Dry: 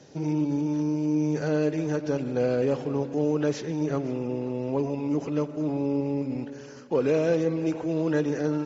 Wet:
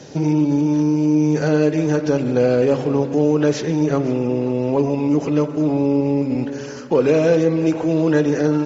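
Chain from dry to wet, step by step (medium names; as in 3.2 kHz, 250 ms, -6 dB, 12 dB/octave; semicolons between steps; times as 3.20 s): de-hum 67.08 Hz, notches 32; in parallel at +1.5 dB: compression, threshold -32 dBFS, peak gain reduction 12 dB; on the sum: trim +6 dB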